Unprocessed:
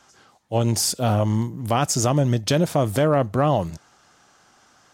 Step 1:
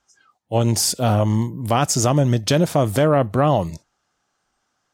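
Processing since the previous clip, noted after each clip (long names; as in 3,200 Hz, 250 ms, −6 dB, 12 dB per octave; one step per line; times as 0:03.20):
noise reduction from a noise print of the clip's start 18 dB
level +2.5 dB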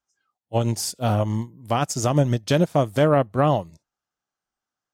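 expander for the loud parts 2.5 to 1, over −25 dBFS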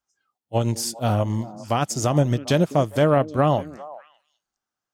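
echo through a band-pass that steps 201 ms, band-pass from 300 Hz, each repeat 1.4 octaves, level −12 dB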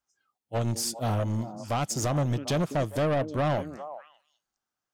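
soft clipping −20.5 dBFS, distortion −8 dB
level −1.5 dB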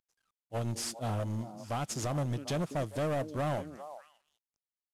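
variable-slope delta modulation 64 kbit/s
level −6 dB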